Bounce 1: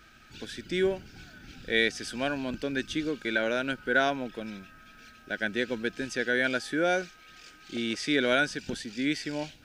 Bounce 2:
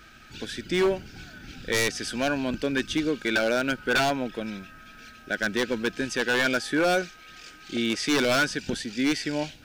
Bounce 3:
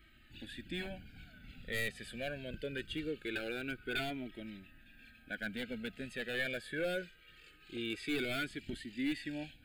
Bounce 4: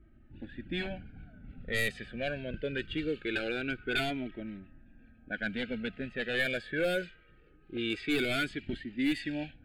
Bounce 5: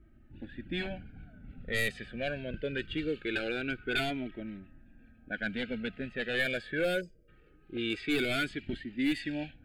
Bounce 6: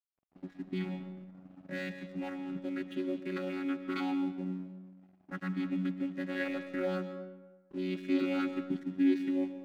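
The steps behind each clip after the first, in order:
wavefolder -21.5 dBFS; trim +5 dB
static phaser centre 2.5 kHz, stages 4; Shepard-style flanger falling 0.23 Hz; trim -6 dB
level-controlled noise filter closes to 580 Hz, open at -32 dBFS; trim +6 dB
time-frequency box 7.01–7.28 s, 660–4600 Hz -29 dB
vocoder on a held chord bare fifth, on F#3; crossover distortion -56.5 dBFS; algorithmic reverb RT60 1.2 s, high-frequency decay 0.6×, pre-delay 90 ms, DRR 10 dB

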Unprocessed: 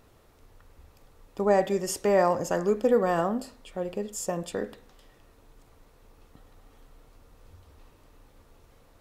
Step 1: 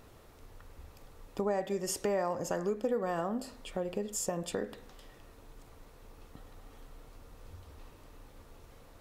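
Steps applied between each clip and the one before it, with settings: compression 3:1, threshold -35 dBFS, peak gain reduction 14 dB; trim +2.5 dB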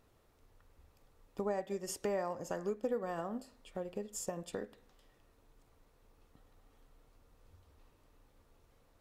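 upward expansion 1.5:1, over -47 dBFS; trim -3 dB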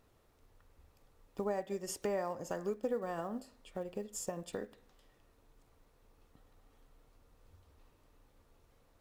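block-companded coder 7-bit

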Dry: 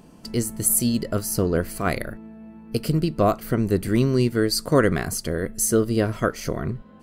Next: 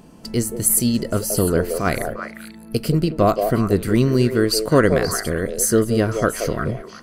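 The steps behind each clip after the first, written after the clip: repeats whose band climbs or falls 176 ms, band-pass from 550 Hz, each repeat 1.4 oct, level -3 dB; trim +3 dB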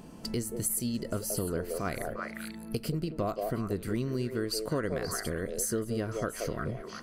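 compression 3:1, threshold -30 dBFS, peak gain reduction 16 dB; trim -2.5 dB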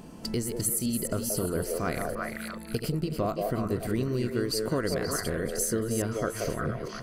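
chunks repeated in reverse 215 ms, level -7 dB; trim +2.5 dB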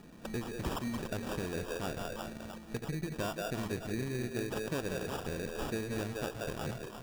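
sample-and-hold 21×; trim -7.5 dB

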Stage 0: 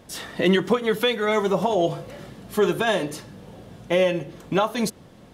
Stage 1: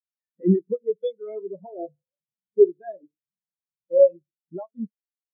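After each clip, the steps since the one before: in parallel at -2 dB: compression, threshold -27 dBFS, peak gain reduction 12 dB; on the sum: spectral contrast expander 4:1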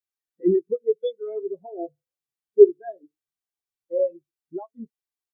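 comb 2.6 ms, depth 73%; trim -1 dB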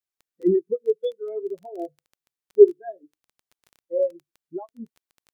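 crackle 12 per s -38 dBFS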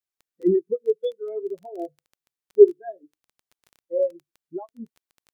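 no audible change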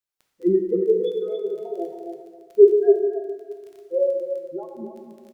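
delay 276 ms -7.5 dB; plate-style reverb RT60 1.9 s, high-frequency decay 0.75×, DRR 2 dB

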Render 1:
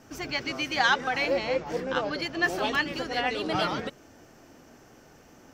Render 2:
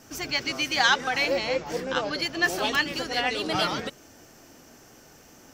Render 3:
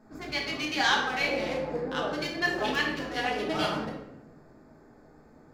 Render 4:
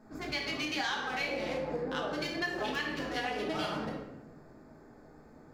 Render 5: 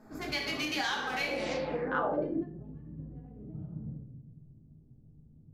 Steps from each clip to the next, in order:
treble shelf 3.7 kHz +10.5 dB
local Wiener filter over 15 samples; simulated room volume 280 m³, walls mixed, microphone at 1.4 m; trim -6 dB
compression 5:1, threshold -31 dBFS, peak gain reduction 11 dB
low-pass sweep 13 kHz -> 130 Hz, 1.33–2.62 s; trim +1 dB

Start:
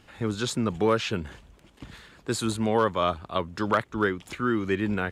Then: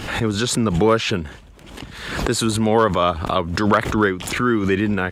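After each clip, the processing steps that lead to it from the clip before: swell ahead of each attack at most 55 dB/s; trim +6.5 dB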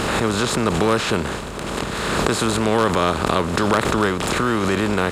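spectral levelling over time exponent 0.4; trim -6 dB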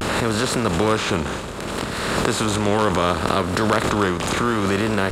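reverberation RT60 5.0 s, pre-delay 3 ms, DRR 12 dB; vibrato 0.65 Hz 86 cents; trim -1 dB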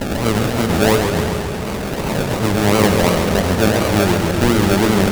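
harmonic-percussive separation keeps harmonic; decimation with a swept rate 35×, swing 60% 2.8 Hz; modulated delay 135 ms, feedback 71%, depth 122 cents, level -6 dB; trim +6 dB

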